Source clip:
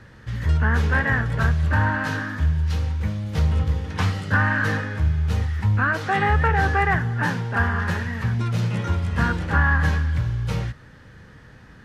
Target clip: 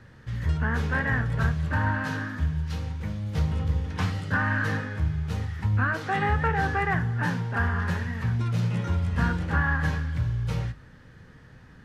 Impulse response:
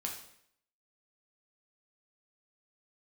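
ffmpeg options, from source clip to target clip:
-filter_complex "[0:a]bandreject=f=50:t=h:w=6,bandreject=f=100:t=h:w=6,asplit=2[s0][s1];[s1]lowshelf=f=360:g=10[s2];[1:a]atrim=start_sample=2205,atrim=end_sample=3528[s3];[s2][s3]afir=irnorm=-1:irlink=0,volume=0.335[s4];[s0][s4]amix=inputs=2:normalize=0,volume=0.422"

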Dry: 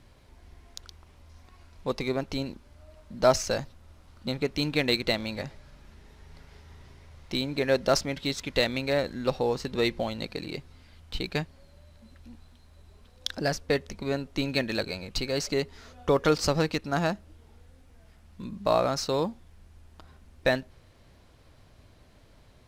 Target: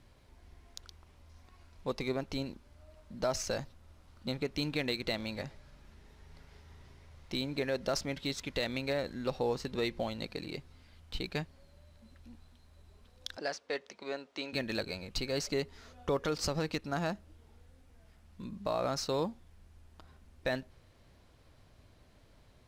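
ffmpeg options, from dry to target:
-filter_complex "[0:a]alimiter=limit=0.15:level=0:latency=1:release=101,asettb=1/sr,asplit=3[s0][s1][s2];[s0]atrim=end=13.374[s3];[s1]atrim=start=13.37:end=14.53,asetpts=PTS-STARTPTS,afade=t=in:d=0.004:c=qsin,afade=t=out:st=1.156:d=0.004:c=qsin,highpass=440,lowpass=6000[s4];[s2]atrim=start=14.526[s5];[s3][s4]acrossfade=d=0.004:c1=hsin:c2=qsin[s6];[s6][s5]acrossfade=d=0.004:c1=qsin:c2=hsin,volume=0.562"

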